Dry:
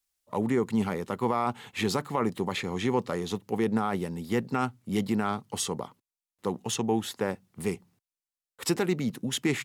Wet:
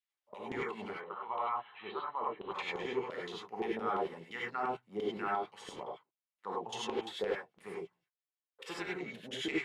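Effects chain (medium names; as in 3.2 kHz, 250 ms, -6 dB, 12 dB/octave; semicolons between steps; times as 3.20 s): LFO band-pass saw down 5.8 Hz 400–3200 Hz; 0.90–2.50 s: rippled Chebyshev low-pass 4.1 kHz, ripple 9 dB; gated-style reverb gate 120 ms rising, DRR -4.5 dB; trim -4 dB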